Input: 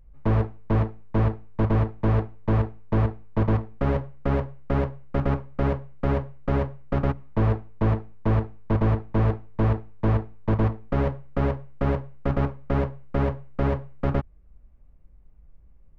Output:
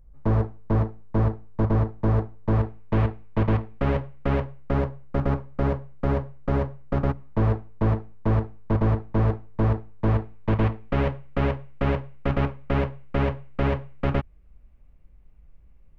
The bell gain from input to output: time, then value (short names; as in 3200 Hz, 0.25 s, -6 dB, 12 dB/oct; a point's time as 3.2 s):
bell 2700 Hz 1.2 oct
2.4 s -7 dB
2.96 s +5 dB
4.39 s +5 dB
4.9 s -2.5 dB
9.92 s -2.5 dB
10.63 s +8 dB